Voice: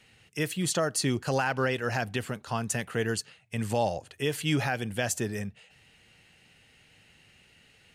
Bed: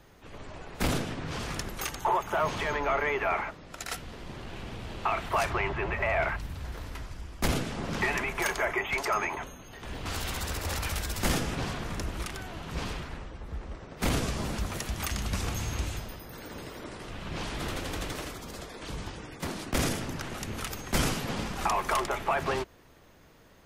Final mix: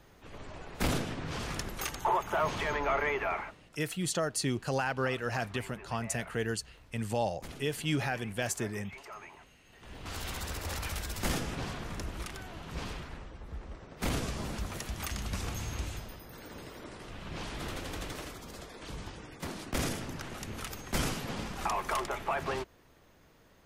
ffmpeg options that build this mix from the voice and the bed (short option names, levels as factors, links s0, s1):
-filter_complex "[0:a]adelay=3400,volume=0.631[s0];[1:a]volume=3.98,afade=t=out:st=3.08:d=0.72:silence=0.149624,afade=t=in:st=9.59:d=0.68:silence=0.199526[s1];[s0][s1]amix=inputs=2:normalize=0"